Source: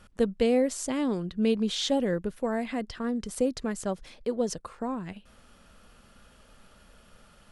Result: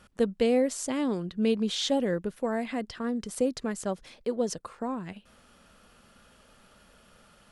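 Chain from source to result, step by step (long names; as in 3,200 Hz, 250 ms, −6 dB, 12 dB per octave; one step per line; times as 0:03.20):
low-shelf EQ 64 Hz −10.5 dB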